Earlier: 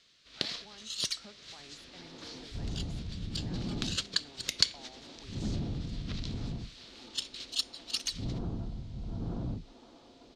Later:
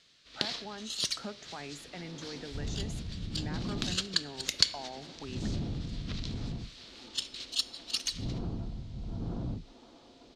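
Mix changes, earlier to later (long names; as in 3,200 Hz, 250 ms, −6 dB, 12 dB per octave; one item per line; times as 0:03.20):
speech +12.0 dB
reverb: on, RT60 2.6 s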